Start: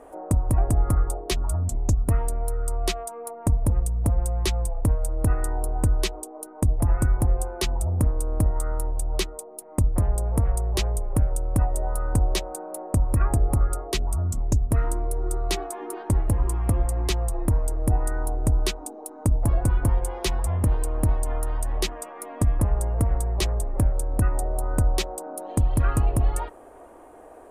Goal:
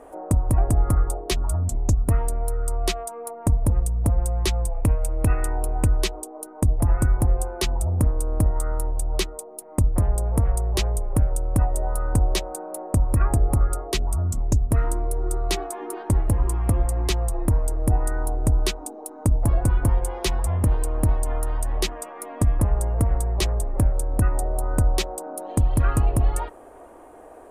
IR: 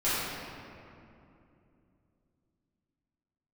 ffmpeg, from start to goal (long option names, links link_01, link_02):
-filter_complex "[0:a]asettb=1/sr,asplit=3[link_01][link_02][link_03];[link_01]atrim=end=4.734[link_04];[link_02]atrim=start=4.73:end=5.97,asetpts=PTS-STARTPTS,afade=type=in:duration=0.004:curve=qsin,afade=type=out:start_time=1.236:duration=0.004:curve=qsin,equalizer=frequency=2500:width_type=o:width=0.59:gain=11.5[link_05];[link_03]atrim=start=5.966[link_06];[link_04][link_05]acrossfade=duration=0.004:curve1=hsin:curve2=qsin[link_07];[link_07][link_06]acrossfade=duration=0.004:curve1=qsin:curve2=hsin,volume=1.5dB"